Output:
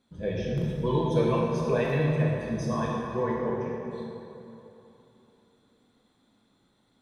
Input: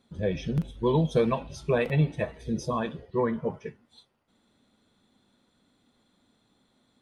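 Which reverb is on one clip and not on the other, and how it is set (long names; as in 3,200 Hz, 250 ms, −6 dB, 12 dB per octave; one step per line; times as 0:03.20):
dense smooth reverb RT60 3.1 s, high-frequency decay 0.55×, DRR −4 dB
level −5 dB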